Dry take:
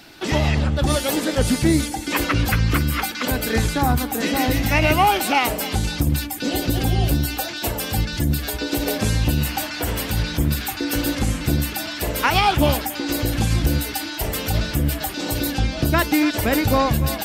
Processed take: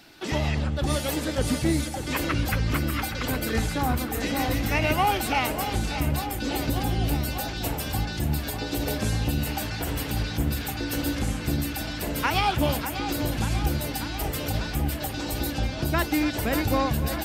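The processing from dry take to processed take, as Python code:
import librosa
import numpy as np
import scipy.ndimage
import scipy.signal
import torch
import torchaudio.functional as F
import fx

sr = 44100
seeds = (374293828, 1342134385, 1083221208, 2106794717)

y = fx.echo_filtered(x, sr, ms=592, feedback_pct=79, hz=3600.0, wet_db=-9.5)
y = F.gain(torch.from_numpy(y), -6.5).numpy()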